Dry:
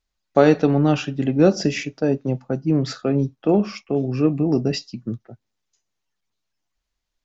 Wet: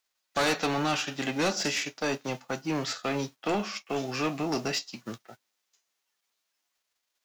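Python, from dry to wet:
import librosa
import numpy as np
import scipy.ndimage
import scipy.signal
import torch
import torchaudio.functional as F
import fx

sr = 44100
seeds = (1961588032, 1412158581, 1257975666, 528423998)

y = fx.envelope_flatten(x, sr, power=0.6)
y = fx.highpass(y, sr, hz=760.0, slope=6)
y = 10.0 ** (-21.5 / 20.0) * np.tanh(y / 10.0 ** (-21.5 / 20.0))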